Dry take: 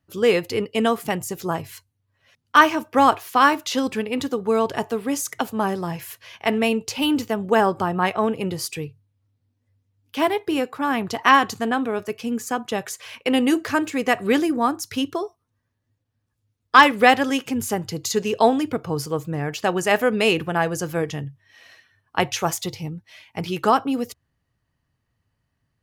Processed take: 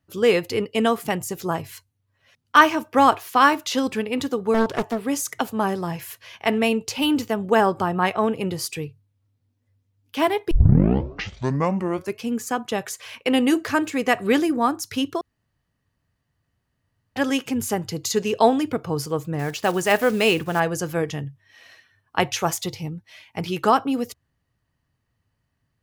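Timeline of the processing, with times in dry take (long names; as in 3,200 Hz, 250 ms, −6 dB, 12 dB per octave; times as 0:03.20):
0:04.54–0:04.99: highs frequency-modulated by the lows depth 0.6 ms
0:10.51: tape start 1.70 s
0:15.21–0:17.16: fill with room tone
0:19.39–0:20.62: one scale factor per block 5 bits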